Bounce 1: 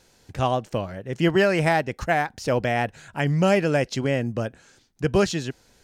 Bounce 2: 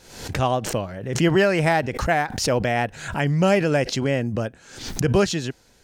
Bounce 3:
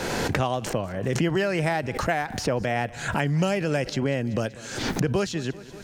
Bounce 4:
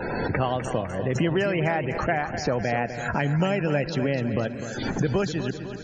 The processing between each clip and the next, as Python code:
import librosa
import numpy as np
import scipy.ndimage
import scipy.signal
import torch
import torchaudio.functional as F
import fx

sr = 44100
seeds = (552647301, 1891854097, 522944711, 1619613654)

y1 = fx.pre_swell(x, sr, db_per_s=79.0)
y1 = y1 * 10.0 ** (1.0 / 20.0)
y2 = fx.echo_feedback(y1, sr, ms=191, feedback_pct=45, wet_db=-23)
y2 = fx.band_squash(y2, sr, depth_pct=100)
y2 = y2 * 10.0 ** (-5.0 / 20.0)
y3 = fx.spec_topn(y2, sr, count=64)
y3 = fx.echo_feedback(y3, sr, ms=252, feedback_pct=56, wet_db=-10.0)